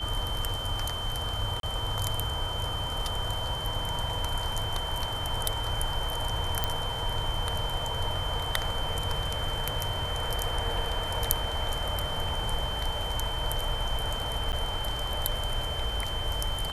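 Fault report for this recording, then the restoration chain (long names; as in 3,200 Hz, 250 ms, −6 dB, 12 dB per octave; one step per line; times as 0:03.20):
whistle 3,100 Hz −34 dBFS
0:01.60–0:01.63: drop-out 32 ms
0:06.64: click −11 dBFS
0:14.52–0:14.53: drop-out 8.9 ms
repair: click removal
notch filter 3,100 Hz, Q 30
repair the gap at 0:01.60, 32 ms
repair the gap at 0:14.52, 8.9 ms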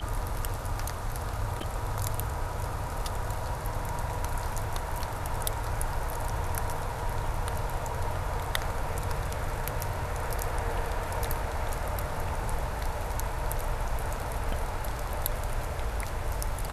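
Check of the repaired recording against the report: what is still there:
none of them is left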